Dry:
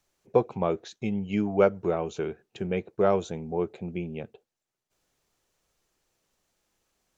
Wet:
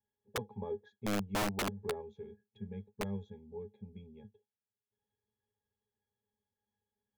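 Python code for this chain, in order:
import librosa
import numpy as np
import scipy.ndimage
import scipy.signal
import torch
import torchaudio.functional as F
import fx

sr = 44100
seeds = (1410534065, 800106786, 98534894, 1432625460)

y = fx.octave_resonator(x, sr, note='G#', decay_s=0.12)
y = fx.spec_box(y, sr, start_s=2.02, length_s=2.36, low_hz=220.0, high_hz=2000.0, gain_db=-7)
y = (np.mod(10.0 ** (26.0 / 20.0) * y + 1.0, 2.0) - 1.0) / 10.0 ** (26.0 / 20.0)
y = y * librosa.db_to_amplitude(-2.0)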